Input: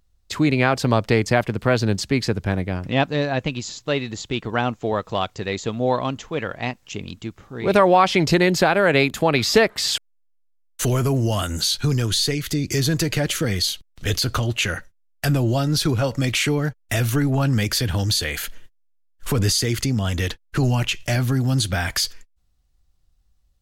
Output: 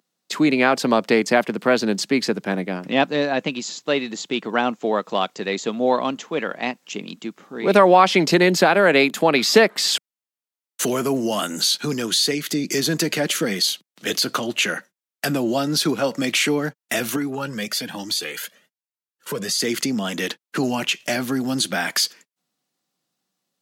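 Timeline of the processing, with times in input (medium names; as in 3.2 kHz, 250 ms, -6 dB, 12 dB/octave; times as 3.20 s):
17.16–19.60 s: Shepard-style flanger rising 1.1 Hz
whole clip: steep high-pass 180 Hz 36 dB/octave; trim +2 dB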